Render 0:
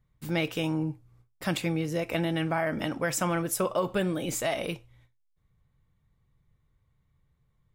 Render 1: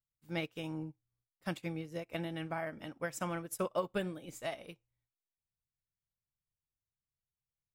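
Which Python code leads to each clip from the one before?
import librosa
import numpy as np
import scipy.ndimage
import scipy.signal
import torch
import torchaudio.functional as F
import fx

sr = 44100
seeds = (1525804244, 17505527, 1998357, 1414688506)

y = fx.upward_expand(x, sr, threshold_db=-40.0, expansion=2.5)
y = y * librosa.db_to_amplitude(-4.5)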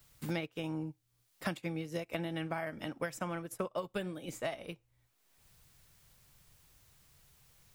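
y = fx.band_squash(x, sr, depth_pct=100)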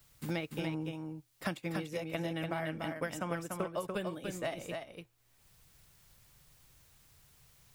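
y = x + 10.0 ** (-4.5 / 20.0) * np.pad(x, (int(291 * sr / 1000.0), 0))[:len(x)]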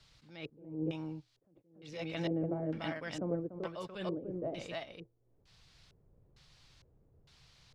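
y = fx.filter_lfo_lowpass(x, sr, shape='square', hz=1.1, low_hz=440.0, high_hz=4400.0, q=2.2)
y = fx.attack_slew(y, sr, db_per_s=100.0)
y = y * librosa.db_to_amplitude(1.0)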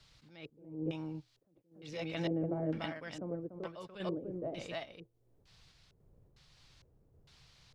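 y = fx.tremolo_random(x, sr, seeds[0], hz=3.5, depth_pct=55)
y = y * librosa.db_to_amplitude(2.0)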